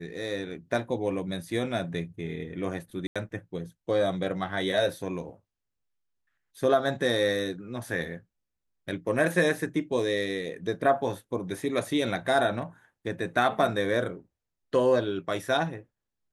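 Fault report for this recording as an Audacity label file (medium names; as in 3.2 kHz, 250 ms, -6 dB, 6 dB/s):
3.070000	3.160000	dropout 86 ms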